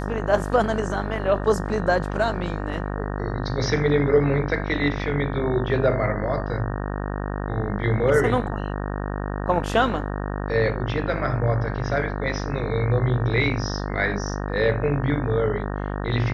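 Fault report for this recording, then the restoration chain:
mains buzz 50 Hz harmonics 37 −28 dBFS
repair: hum removal 50 Hz, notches 37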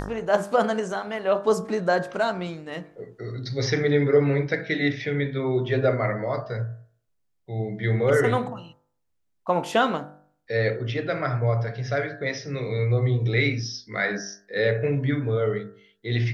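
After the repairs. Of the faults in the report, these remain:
none of them is left

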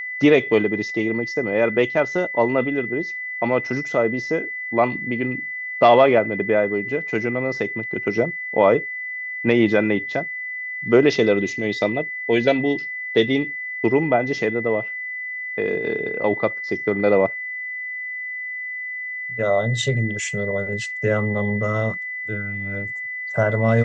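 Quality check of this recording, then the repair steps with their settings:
whistle 2,000 Hz −27 dBFS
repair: notch filter 2,000 Hz, Q 30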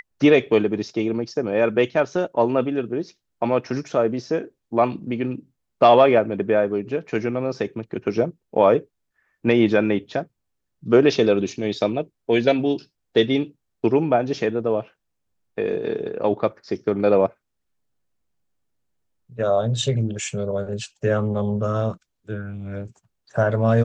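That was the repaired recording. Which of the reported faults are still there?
none of them is left

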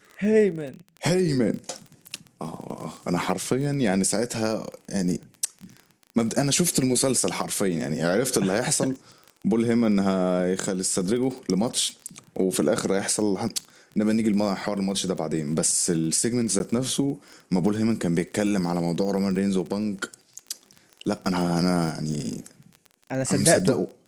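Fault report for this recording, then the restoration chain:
surface crackle 22 per second −32 dBFS
0:16.59–0:16.60: drop-out 11 ms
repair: click removal
repair the gap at 0:16.59, 11 ms

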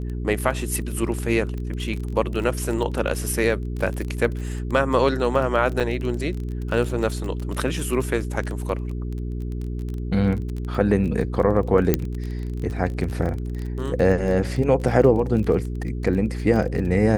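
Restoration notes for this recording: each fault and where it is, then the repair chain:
surface crackle 23 per second −28 dBFS
mains hum 60 Hz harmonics 7 −28 dBFS
0:05.80–0:05.81: drop-out 6.8 ms
0:11.94: click −4 dBFS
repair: click removal
hum removal 60 Hz, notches 7
repair the gap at 0:05.80, 6.8 ms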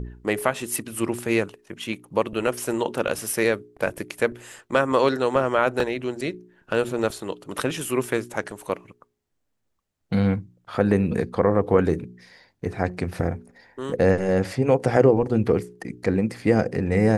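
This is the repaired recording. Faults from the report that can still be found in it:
none of them is left

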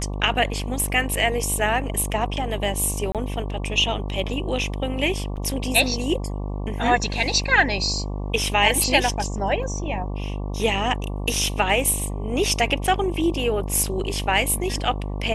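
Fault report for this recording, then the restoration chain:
mains buzz 50 Hz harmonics 23 −28 dBFS
0:03.12–0:03.15: drop-out 27 ms
0:05.36–0:05.37: drop-out 7.4 ms
0:09.63: drop-out 2.6 ms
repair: hum removal 50 Hz, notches 23
repair the gap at 0:03.12, 27 ms
repair the gap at 0:05.36, 7.4 ms
repair the gap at 0:09.63, 2.6 ms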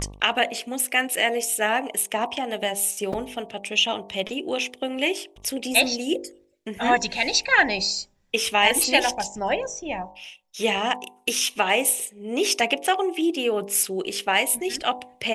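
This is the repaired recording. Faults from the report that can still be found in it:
none of them is left

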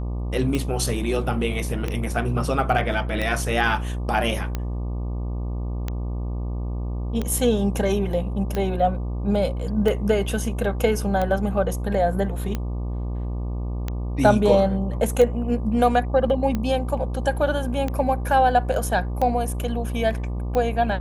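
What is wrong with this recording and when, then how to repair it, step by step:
mains buzz 60 Hz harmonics 20 −27 dBFS
scratch tick 45 rpm −13 dBFS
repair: click removal
hum removal 60 Hz, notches 20

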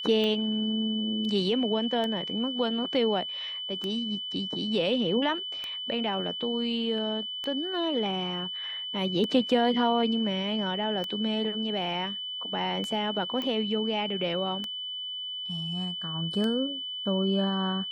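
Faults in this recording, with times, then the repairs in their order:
scratch tick 33 1/3 rpm −19 dBFS
whistle 3,000 Hz −33 dBFS
0:13.42: click −20 dBFS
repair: click removal
notch filter 3,000 Hz, Q 30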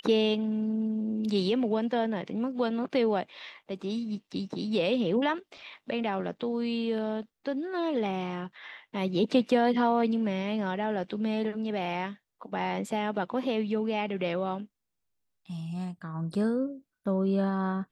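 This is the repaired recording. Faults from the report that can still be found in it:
none of them is left

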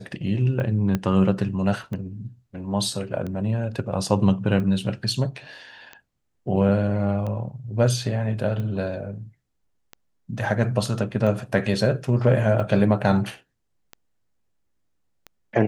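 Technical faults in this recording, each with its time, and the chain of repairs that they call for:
scratch tick 45 rpm −21 dBFS
0:00.95: click −11 dBFS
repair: click removal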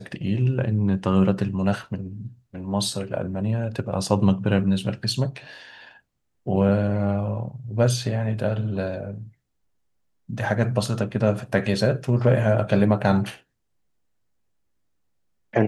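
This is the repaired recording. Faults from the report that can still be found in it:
0:00.95: click

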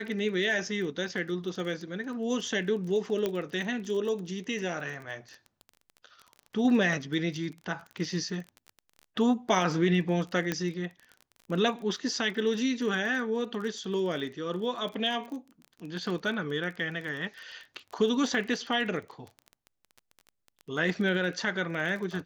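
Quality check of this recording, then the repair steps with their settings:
surface crackle 25 per second −36 dBFS
0:03.26: click −16 dBFS
0:10.52: click −14 dBFS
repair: click removal

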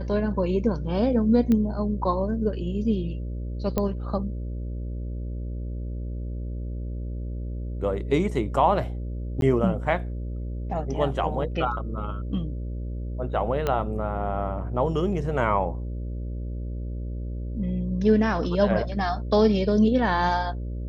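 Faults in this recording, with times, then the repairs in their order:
mains buzz 60 Hz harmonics 10 −31 dBFS
0:01.52: click −14 dBFS
0:03.78: click −11 dBFS
0:09.41–0:09.42: drop-out 12 ms
0:13.67: click −12 dBFS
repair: click removal
hum removal 60 Hz, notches 10
repair the gap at 0:09.41, 12 ms

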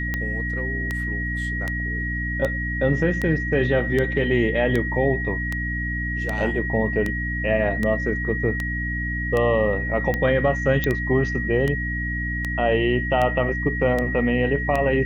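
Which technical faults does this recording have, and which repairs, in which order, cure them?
mains hum 60 Hz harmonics 5 −28 dBFS
scratch tick 78 rpm −12 dBFS
whistle 1,900 Hz −27 dBFS
0:10.84: click −9 dBFS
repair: click removal
hum removal 60 Hz, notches 5
notch filter 1,900 Hz, Q 30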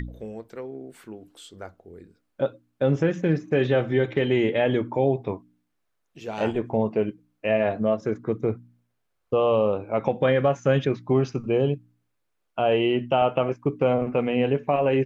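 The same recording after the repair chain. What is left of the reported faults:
none of them is left

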